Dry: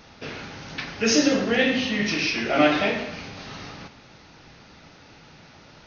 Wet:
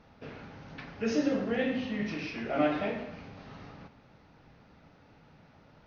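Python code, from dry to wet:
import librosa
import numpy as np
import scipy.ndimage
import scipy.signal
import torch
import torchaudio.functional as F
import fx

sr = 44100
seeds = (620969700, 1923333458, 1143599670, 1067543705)

y = fx.lowpass(x, sr, hz=1000.0, slope=6)
y = fx.peak_eq(y, sr, hz=350.0, db=-5.5, octaves=0.22)
y = F.gain(torch.from_numpy(y), -6.5).numpy()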